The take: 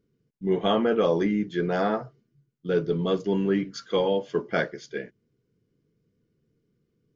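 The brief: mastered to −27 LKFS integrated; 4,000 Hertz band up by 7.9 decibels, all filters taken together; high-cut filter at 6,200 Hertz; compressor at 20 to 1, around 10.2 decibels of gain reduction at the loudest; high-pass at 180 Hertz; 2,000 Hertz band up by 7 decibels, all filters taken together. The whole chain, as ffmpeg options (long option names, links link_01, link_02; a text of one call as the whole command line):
ffmpeg -i in.wav -af "highpass=180,lowpass=6200,equalizer=frequency=2000:width_type=o:gain=8,equalizer=frequency=4000:width_type=o:gain=7.5,acompressor=threshold=-27dB:ratio=20,volume=6dB" out.wav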